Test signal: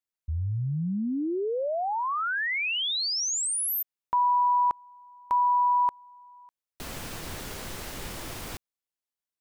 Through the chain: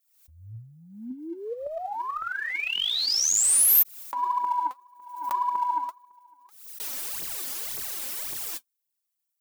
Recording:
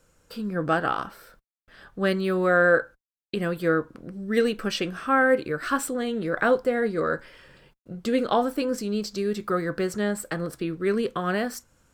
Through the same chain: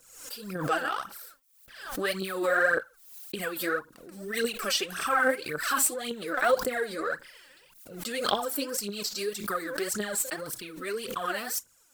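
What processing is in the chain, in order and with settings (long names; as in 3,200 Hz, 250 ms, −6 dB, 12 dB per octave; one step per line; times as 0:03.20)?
RIAA equalisation recording
phase shifter 1.8 Hz, delay 4 ms, feedback 72%
background raised ahead of every attack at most 71 dB per second
level −8 dB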